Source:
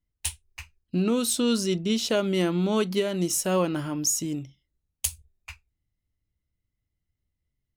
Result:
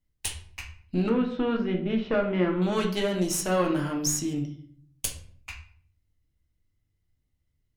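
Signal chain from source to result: 1.09–2.62 LPF 2300 Hz 24 dB/oct; dynamic EQ 1400 Hz, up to +4 dB, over -40 dBFS, Q 0.76; in parallel at +3 dB: compressor, threshold -35 dBFS, peak gain reduction 16 dB; on the sum: tube stage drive 10 dB, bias 0.65; reverb RT60 0.55 s, pre-delay 6 ms, DRR 1.5 dB; gain -3 dB

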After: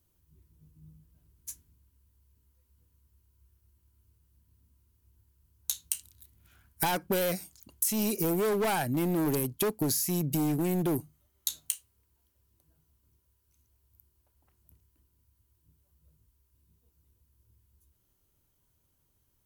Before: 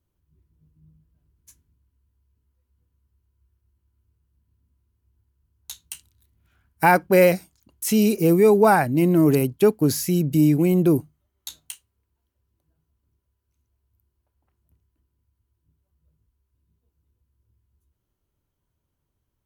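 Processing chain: overloaded stage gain 16.5 dB; high shelf 4500 Hz +11.5 dB; compressor 10:1, threshold -28 dBFS, peak gain reduction 15 dB; gain +1.5 dB

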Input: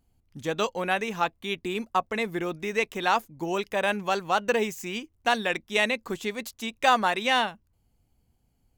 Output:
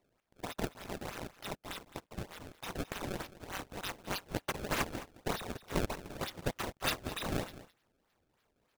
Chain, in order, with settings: inverse Chebyshev high-pass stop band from 850 Hz, stop band 80 dB; decimation with a swept rate 26×, swing 160% 3.3 Hz; echo 0.213 s -16.5 dB; gain +8.5 dB

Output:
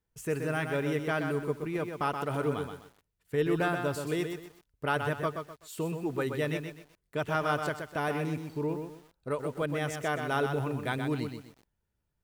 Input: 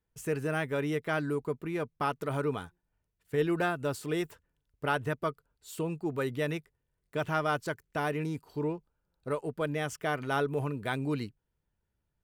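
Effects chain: lo-fi delay 0.126 s, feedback 35%, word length 9-bit, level -6 dB

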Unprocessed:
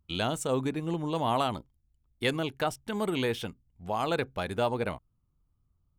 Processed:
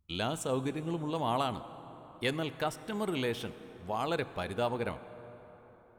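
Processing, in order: plate-style reverb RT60 4.8 s, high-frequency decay 0.5×, DRR 13 dB; gain -3.5 dB

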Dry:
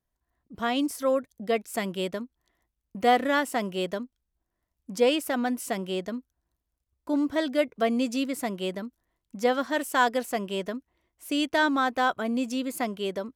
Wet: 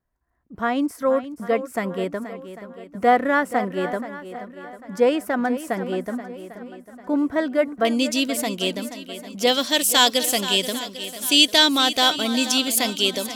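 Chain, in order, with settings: resonant high shelf 2300 Hz -7.5 dB, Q 1.5, from 7.85 s +7 dB, from 9.47 s +13.5 dB; swung echo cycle 0.797 s, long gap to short 1.5:1, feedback 35%, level -12.5 dB; gain +4 dB

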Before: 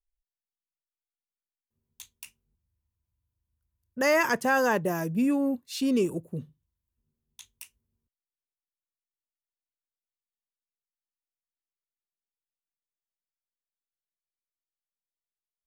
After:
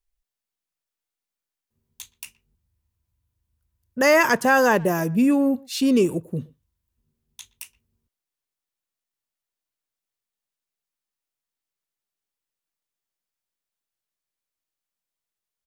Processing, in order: speakerphone echo 0.12 s, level -23 dB; gain +6.5 dB

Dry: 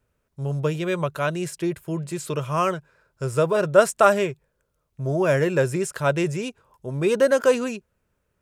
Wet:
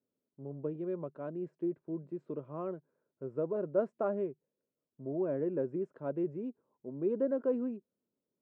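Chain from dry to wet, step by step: ladder band-pass 310 Hz, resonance 45%

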